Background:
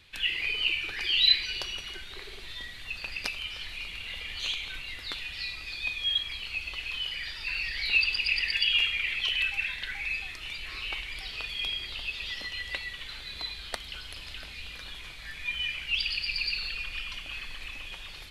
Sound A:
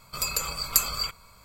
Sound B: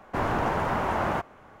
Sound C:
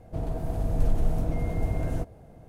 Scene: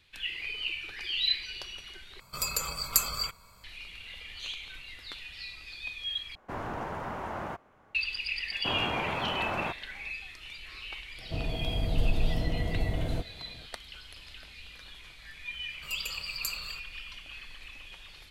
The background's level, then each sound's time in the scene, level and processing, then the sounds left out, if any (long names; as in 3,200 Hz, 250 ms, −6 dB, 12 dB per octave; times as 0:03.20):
background −6.5 dB
0:02.20: overwrite with A −3 dB
0:06.35: overwrite with B −10 dB
0:08.51: mix in B −6.5 dB + high-pass filter 55 Hz
0:11.18: mix in C −2.5 dB
0:15.69: mix in A −14.5 dB